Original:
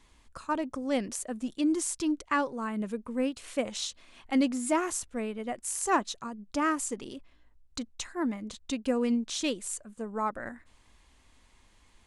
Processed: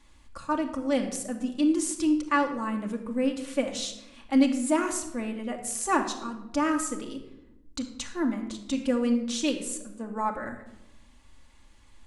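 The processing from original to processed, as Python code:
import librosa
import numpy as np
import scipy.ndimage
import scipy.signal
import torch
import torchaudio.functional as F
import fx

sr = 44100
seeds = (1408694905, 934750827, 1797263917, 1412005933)

y = fx.room_shoebox(x, sr, seeds[0], volume_m3=3000.0, walls='furnished', distance_m=2.4)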